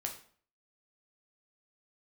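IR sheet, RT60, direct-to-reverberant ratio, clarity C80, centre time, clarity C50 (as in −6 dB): 0.50 s, 1.5 dB, 13.5 dB, 17 ms, 9.5 dB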